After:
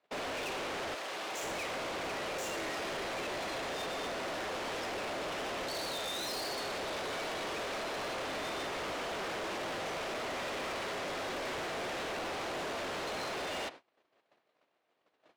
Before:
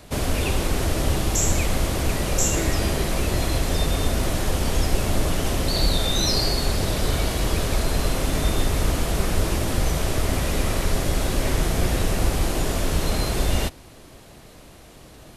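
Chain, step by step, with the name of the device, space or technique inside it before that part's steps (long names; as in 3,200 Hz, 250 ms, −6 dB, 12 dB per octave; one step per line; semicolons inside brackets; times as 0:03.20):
walkie-talkie (band-pass filter 490–2,900 Hz; hard clipping −36 dBFS, distortion −6 dB; noise gate −48 dBFS, range −27 dB)
0:00.94–0:01.42: high-pass filter 1,000 Hz → 350 Hz 6 dB per octave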